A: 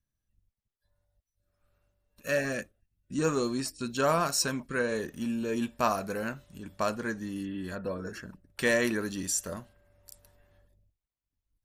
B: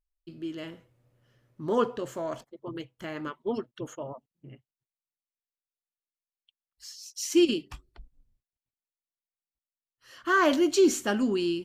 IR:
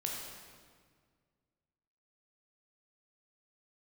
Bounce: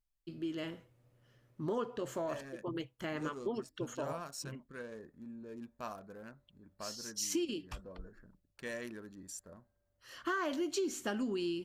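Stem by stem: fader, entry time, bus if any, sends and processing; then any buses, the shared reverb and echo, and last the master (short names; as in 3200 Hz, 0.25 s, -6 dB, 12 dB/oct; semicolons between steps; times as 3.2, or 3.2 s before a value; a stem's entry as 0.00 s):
-16.0 dB, 0.00 s, no send, Wiener smoothing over 15 samples
-1.0 dB, 0.00 s, no send, dry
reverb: off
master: compressor 6:1, threshold -33 dBFS, peak gain reduction 14.5 dB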